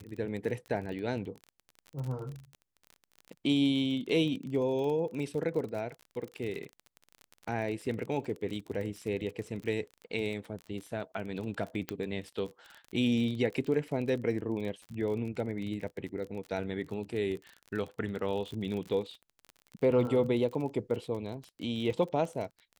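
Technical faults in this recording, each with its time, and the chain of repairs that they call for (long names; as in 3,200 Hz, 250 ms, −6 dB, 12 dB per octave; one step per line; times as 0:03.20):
surface crackle 34 per second −37 dBFS
0:11.89: click −18 dBFS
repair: click removal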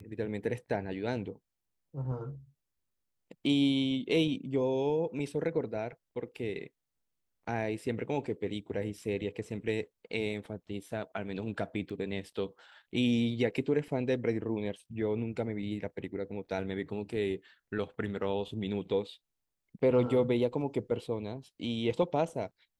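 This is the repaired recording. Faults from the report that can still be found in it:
0:11.89: click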